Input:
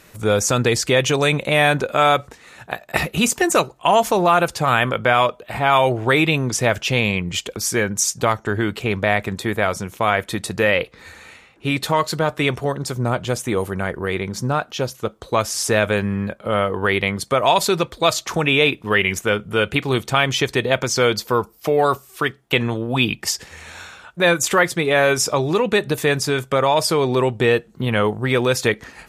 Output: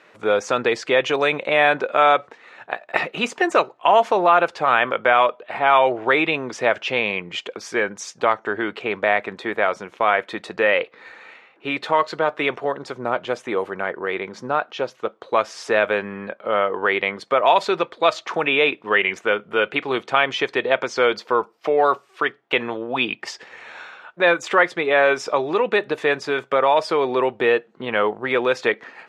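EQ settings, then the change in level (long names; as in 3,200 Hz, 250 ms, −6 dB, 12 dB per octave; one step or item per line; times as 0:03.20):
band-pass filter 390–2,700 Hz
+1.0 dB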